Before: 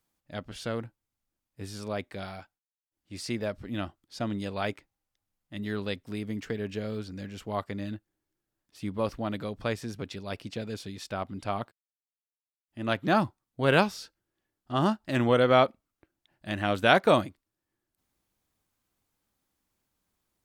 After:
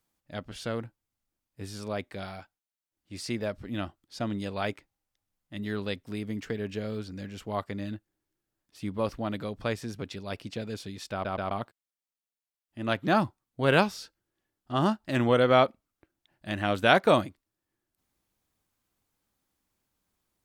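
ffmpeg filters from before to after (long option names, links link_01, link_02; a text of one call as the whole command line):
ffmpeg -i in.wav -filter_complex "[0:a]asplit=4[link_01][link_02][link_03][link_04];[link_01]atrim=end=11.252[link_05];[link_02]atrim=start=11.118:end=11.252[link_06];[link_03]atrim=start=11.118:end=11.252[link_07];[link_04]atrim=start=11.508[link_08];[link_05][link_06]acrossfade=duration=0.004:curve1=hsin:curve2=hsin[link_09];[link_09][link_07]acrossfade=duration=0.004:curve1=hsin:curve2=hsin[link_10];[link_10][link_08]acrossfade=duration=0.004:curve1=hsin:curve2=hsin" out.wav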